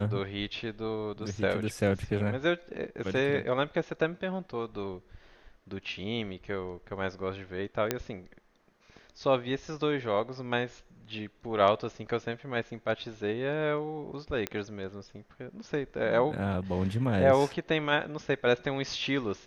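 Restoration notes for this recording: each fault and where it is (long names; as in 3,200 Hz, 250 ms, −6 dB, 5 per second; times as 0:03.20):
0:07.91: click −11 dBFS
0:14.47: click −15 dBFS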